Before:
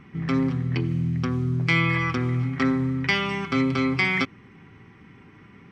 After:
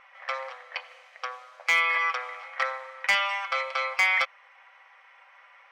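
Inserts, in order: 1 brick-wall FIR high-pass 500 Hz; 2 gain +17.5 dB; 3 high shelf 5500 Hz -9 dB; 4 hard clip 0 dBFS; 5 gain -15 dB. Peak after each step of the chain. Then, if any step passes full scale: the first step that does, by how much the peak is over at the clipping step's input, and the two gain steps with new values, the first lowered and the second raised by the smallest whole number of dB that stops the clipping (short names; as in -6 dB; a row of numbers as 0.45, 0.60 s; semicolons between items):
-10.0, +7.5, +6.5, 0.0, -15.0 dBFS; step 2, 6.5 dB; step 2 +10.5 dB, step 5 -8 dB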